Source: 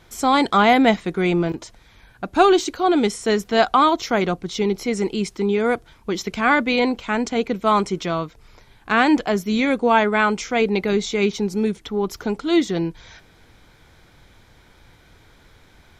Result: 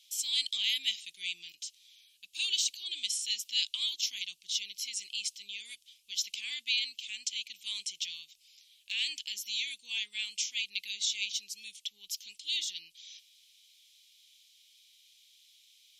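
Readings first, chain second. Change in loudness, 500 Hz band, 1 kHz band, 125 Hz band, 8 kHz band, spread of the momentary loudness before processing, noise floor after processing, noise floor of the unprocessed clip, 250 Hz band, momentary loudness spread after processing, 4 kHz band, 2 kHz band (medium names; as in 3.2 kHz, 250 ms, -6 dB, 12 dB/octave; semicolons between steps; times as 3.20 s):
-13.5 dB, under -40 dB, under -40 dB, under -40 dB, 0.0 dB, 10 LU, -67 dBFS, -53 dBFS, under -40 dB, 14 LU, -0.5 dB, -16.0 dB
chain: elliptic high-pass 2.8 kHz, stop band 50 dB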